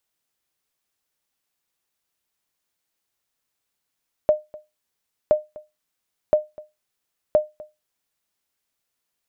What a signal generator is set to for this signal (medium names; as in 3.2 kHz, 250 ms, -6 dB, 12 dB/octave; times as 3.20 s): sonar ping 609 Hz, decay 0.21 s, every 1.02 s, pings 4, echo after 0.25 s, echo -22 dB -8 dBFS